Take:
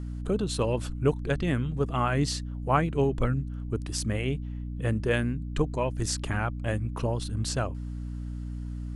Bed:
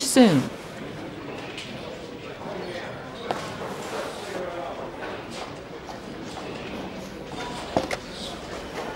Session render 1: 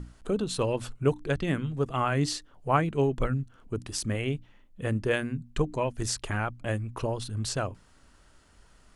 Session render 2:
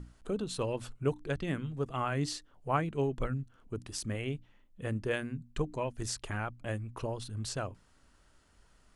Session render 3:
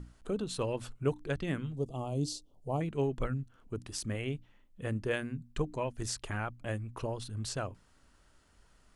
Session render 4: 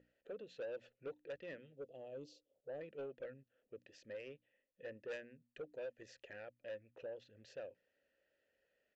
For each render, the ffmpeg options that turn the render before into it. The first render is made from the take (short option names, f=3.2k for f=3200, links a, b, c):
-af "bandreject=f=60:t=h:w=6,bandreject=f=120:t=h:w=6,bandreject=f=180:t=h:w=6,bandreject=f=240:t=h:w=6,bandreject=f=300:t=h:w=6"
-af "volume=-6dB"
-filter_complex "[0:a]asettb=1/sr,asplit=3[a][b][c];[a]atrim=end=1.764[d];[b]atrim=start=1.76:end=2.81,asetpts=PTS-STARTPTS,afade=t=in:d=0.004:c=qsin,afade=t=out:st=1.046:d=0.004:c=qsin,asuperstop=centerf=1700:order=4:qfactor=0.52[e];[c]atrim=start=2.806[f];[d][e]acrossfade=d=0.004:c1=hsin:c2=qsin[g];[g][f]acrossfade=d=0.004:c1=qsin:c2=hsin"
-filter_complex "[0:a]asplit=3[a][b][c];[a]bandpass=f=530:t=q:w=8,volume=0dB[d];[b]bandpass=f=1.84k:t=q:w=8,volume=-6dB[e];[c]bandpass=f=2.48k:t=q:w=8,volume=-9dB[f];[d][e][f]amix=inputs=3:normalize=0,aresample=16000,asoftclip=type=tanh:threshold=-40dB,aresample=44100"